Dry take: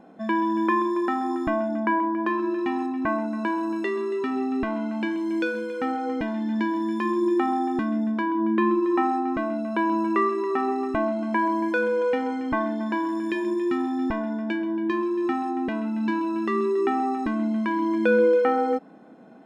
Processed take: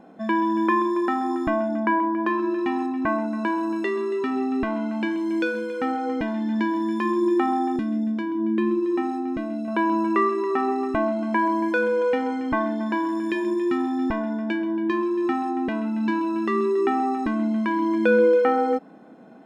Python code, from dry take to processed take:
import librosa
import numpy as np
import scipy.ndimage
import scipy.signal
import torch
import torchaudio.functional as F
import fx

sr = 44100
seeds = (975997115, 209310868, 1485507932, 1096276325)

y = fx.peak_eq(x, sr, hz=1100.0, db=-11.5, octaves=1.7, at=(7.76, 9.68))
y = y * librosa.db_to_amplitude(1.5)